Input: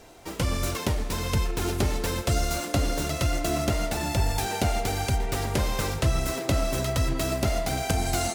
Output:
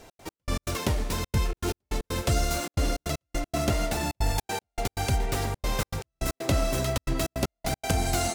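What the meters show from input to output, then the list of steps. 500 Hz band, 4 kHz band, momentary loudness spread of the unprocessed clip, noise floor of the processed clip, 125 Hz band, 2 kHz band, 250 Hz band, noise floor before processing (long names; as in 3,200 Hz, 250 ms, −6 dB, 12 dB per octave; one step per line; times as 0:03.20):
−2.0 dB, −2.0 dB, 2 LU, below −85 dBFS, −2.5 dB, −2.0 dB, −2.0 dB, −36 dBFS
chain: gate pattern "x.x..x.xxxxxx.x" 157 BPM −60 dB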